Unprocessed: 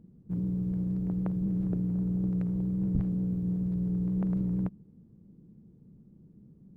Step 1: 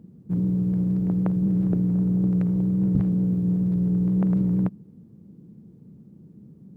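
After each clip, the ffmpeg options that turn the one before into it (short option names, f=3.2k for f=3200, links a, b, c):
-af "highpass=94,volume=8dB"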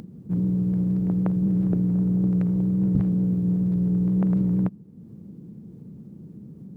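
-af "acompressor=mode=upward:threshold=-34dB:ratio=2.5"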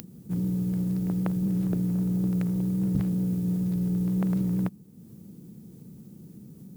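-af "crystalizer=i=8:c=0,volume=-4.5dB"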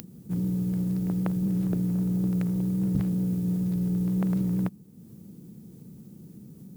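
-af anull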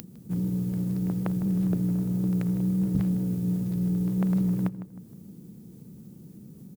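-filter_complex "[0:a]asplit=2[a][b];[b]adelay=156,lowpass=f=2.1k:p=1,volume=-12dB,asplit=2[c][d];[d]adelay=156,lowpass=f=2.1k:p=1,volume=0.39,asplit=2[e][f];[f]adelay=156,lowpass=f=2.1k:p=1,volume=0.39,asplit=2[g][h];[h]adelay=156,lowpass=f=2.1k:p=1,volume=0.39[i];[a][c][e][g][i]amix=inputs=5:normalize=0"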